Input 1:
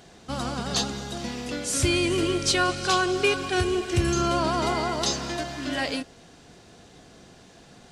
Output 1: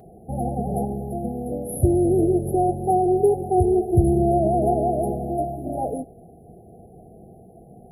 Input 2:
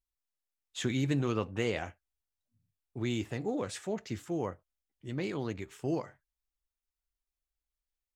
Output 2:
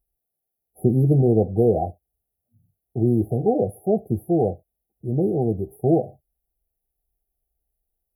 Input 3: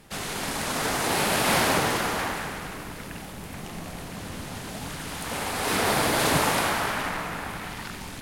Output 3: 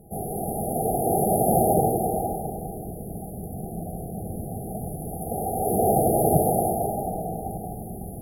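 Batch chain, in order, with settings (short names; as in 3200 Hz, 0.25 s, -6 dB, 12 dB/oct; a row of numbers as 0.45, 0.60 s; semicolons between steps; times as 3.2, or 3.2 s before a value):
dynamic EQ 1000 Hz, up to +5 dB, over -42 dBFS, Q 1.5; brick-wall FIR band-stop 840–9900 Hz; notch comb 280 Hz; normalise peaks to -6 dBFS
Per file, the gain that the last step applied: +6.5, +15.0, +6.0 dB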